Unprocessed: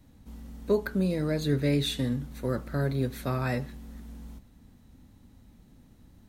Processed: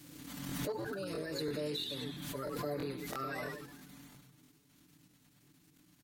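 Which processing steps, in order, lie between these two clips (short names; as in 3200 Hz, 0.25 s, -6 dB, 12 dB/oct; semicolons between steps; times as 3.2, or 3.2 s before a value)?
bin magnitudes rounded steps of 30 dB; level quantiser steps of 11 dB; soft clip -21 dBFS, distortion -18 dB; bell 150 Hz -11.5 dB 2.7 oct; frequency-shifting echo 0.104 s, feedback 47%, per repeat -92 Hz, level -6 dB; limiter -31 dBFS, peak gain reduction 7 dB; HPF 110 Hz 12 dB/oct; comb 7.1 ms, depth 90%; speed mistake 24 fps film run at 25 fps; crackling interface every 0.33 s, samples 1024, repeat, from 0.47; backwards sustainer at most 31 dB/s; gain -2 dB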